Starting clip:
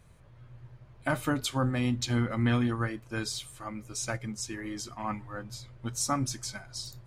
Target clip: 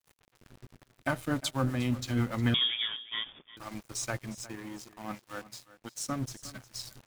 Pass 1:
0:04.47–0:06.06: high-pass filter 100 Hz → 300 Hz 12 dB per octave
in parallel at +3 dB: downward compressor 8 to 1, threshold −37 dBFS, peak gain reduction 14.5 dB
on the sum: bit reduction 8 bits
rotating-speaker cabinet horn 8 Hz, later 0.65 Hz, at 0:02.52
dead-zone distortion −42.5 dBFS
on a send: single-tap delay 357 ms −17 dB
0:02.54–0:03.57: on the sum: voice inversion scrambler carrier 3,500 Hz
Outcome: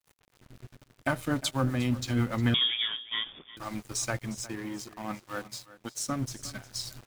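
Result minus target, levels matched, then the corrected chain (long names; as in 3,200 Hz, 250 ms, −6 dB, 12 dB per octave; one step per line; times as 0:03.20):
downward compressor: peak gain reduction −9.5 dB
0:04.47–0:06.06: high-pass filter 100 Hz → 300 Hz 12 dB per octave
in parallel at +3 dB: downward compressor 8 to 1, threshold −48 dBFS, peak gain reduction 24.5 dB
on the sum: bit reduction 8 bits
rotating-speaker cabinet horn 8 Hz, later 0.65 Hz, at 0:02.52
dead-zone distortion −42.5 dBFS
on a send: single-tap delay 357 ms −17 dB
0:02.54–0:03.57: on the sum: voice inversion scrambler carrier 3,500 Hz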